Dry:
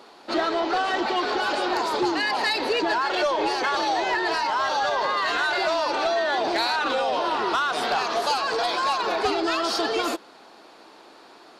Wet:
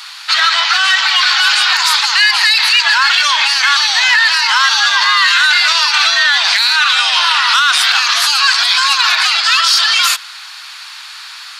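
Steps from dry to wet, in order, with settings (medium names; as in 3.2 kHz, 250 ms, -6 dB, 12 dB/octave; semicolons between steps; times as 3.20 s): Bessel high-pass 2.1 kHz, order 6; loudness maximiser +26.5 dB; trim -1 dB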